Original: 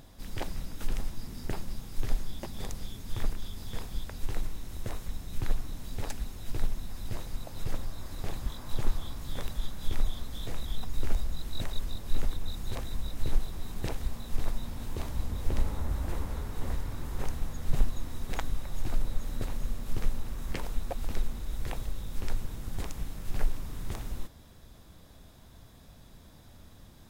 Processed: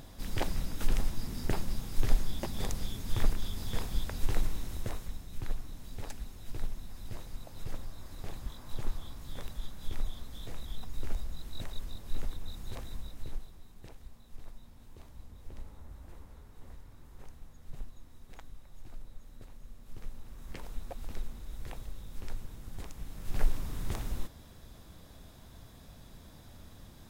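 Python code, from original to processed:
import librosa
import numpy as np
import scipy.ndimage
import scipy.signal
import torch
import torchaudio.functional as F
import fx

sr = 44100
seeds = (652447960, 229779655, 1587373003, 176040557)

y = fx.gain(x, sr, db=fx.line((4.61, 3.0), (5.29, -6.0), (12.93, -6.0), (13.71, -17.0), (19.64, -17.0), (20.74, -7.5), (22.97, -7.5), (23.47, 1.0)))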